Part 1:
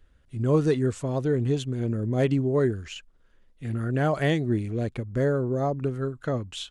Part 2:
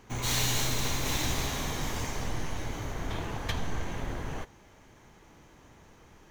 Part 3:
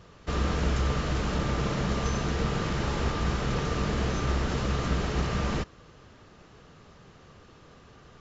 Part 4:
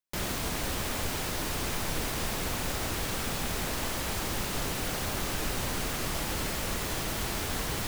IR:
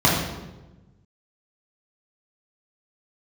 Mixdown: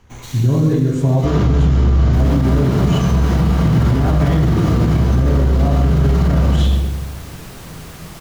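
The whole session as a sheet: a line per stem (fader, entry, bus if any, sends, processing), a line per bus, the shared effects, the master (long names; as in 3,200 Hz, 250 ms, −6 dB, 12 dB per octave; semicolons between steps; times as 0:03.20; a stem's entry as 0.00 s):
+1.0 dB, 0.00 s, send −12 dB, downward compressor, threshold −27 dBFS, peak gain reduction 10.5 dB
0.0 dB, 0.00 s, no send, brickwall limiter −21.5 dBFS, peak gain reduction 5.5 dB; automatic ducking −10 dB, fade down 0.95 s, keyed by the first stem
−5.5 dB, 0.95 s, send −7 dB, no processing
−5.0 dB, 2.00 s, no send, no processing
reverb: on, RT60 1.1 s, pre-delay 3 ms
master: brickwall limiter −6.5 dBFS, peak gain reduction 10 dB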